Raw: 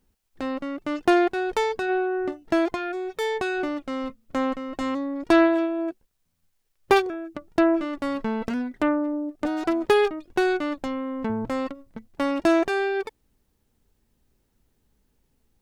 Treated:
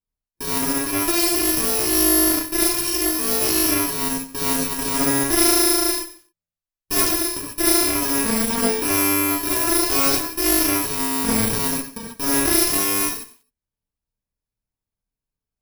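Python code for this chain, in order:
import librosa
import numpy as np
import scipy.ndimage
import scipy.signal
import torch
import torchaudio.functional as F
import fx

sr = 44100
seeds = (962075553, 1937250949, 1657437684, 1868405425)

p1 = fx.bit_reversed(x, sr, seeds[0], block=64)
p2 = fx.level_steps(p1, sr, step_db=19)
p3 = p1 + F.gain(torch.from_numpy(p2), -2.5).numpy()
p4 = fx.leveller(p3, sr, passes=5)
p5 = p4 + fx.echo_feedback(p4, sr, ms=129, feedback_pct=19, wet_db=-21.0, dry=0)
p6 = fx.rev_gated(p5, sr, seeds[1], gate_ms=170, shape='flat', drr_db=-6.5)
p7 = fx.cheby_harmonics(p6, sr, harmonics=(3, 4, 6, 8), levels_db=(-31, -6, -17, -22), full_scale_db=13.0)
p8 = fx.echo_crushed(p7, sr, ms=91, feedback_pct=35, bits=4, wet_db=-14.5)
y = F.gain(torch.from_numpy(p8), -18.0).numpy()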